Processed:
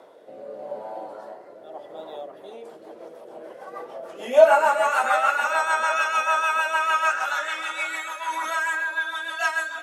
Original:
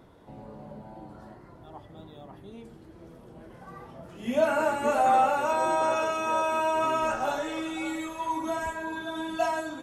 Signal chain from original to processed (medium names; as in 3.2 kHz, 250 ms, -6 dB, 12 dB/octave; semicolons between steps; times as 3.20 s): high-pass sweep 550 Hz -> 1.5 kHz, 4.24–5.11 s; on a send: tape echo 379 ms, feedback 87%, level -10.5 dB, low-pass 1.4 kHz; on the sum: rotary cabinet horn 0.8 Hz, later 6.7 Hz, at 1.98 s; 8.28–8.84 s: level flattener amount 50%; trim +8 dB